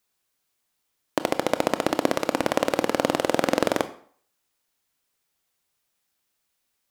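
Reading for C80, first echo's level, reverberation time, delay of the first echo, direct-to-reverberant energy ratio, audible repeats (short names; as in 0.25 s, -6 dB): 17.5 dB, none, 0.50 s, none, 11.0 dB, none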